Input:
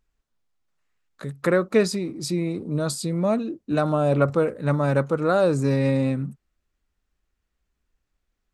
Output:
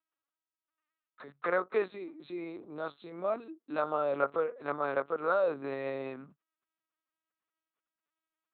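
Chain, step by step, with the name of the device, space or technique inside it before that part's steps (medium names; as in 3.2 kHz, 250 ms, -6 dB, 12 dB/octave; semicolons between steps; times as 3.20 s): talking toy (LPC vocoder at 8 kHz pitch kept; high-pass 400 Hz 12 dB/octave; peaking EQ 1.2 kHz +7 dB 0.54 oct); trim -8 dB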